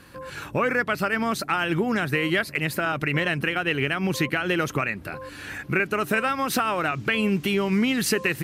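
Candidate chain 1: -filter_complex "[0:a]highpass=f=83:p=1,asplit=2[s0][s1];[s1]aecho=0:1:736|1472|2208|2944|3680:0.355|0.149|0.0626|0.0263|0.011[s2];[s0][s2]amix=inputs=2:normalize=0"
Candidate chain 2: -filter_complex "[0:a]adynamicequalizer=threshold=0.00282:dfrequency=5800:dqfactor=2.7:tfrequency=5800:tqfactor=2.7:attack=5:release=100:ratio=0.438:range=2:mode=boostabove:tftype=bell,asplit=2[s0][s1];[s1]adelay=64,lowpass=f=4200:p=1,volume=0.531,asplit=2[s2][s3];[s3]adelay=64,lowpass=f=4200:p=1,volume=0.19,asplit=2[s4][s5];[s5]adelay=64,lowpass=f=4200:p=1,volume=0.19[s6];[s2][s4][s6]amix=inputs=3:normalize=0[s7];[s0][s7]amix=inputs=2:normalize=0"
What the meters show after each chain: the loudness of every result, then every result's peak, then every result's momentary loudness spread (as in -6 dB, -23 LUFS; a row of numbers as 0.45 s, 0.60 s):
-24.0 LUFS, -23.0 LUFS; -9.0 dBFS, -8.0 dBFS; 5 LU, 6 LU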